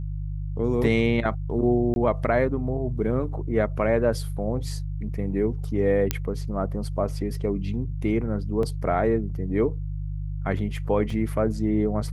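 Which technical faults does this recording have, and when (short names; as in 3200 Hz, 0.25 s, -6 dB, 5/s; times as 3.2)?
hum 50 Hz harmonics 3 -30 dBFS
1.94–1.96 gap 21 ms
6.11 pop -7 dBFS
8.63 gap 2.3 ms
11.1 gap 3.9 ms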